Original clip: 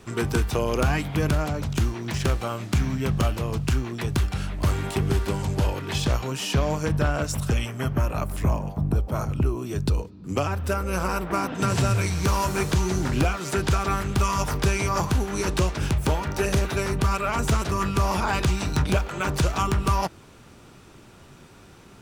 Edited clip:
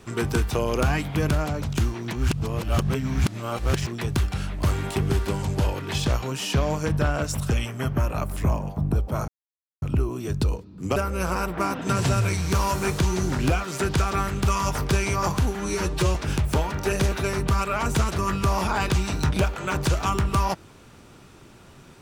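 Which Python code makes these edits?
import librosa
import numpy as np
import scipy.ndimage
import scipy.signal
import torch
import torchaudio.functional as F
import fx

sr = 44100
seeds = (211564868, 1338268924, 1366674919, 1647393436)

y = fx.edit(x, sr, fx.reverse_span(start_s=2.13, length_s=1.74),
    fx.insert_silence(at_s=9.28, length_s=0.54),
    fx.cut(start_s=10.42, length_s=0.27),
    fx.stretch_span(start_s=15.28, length_s=0.4, factor=1.5), tone=tone)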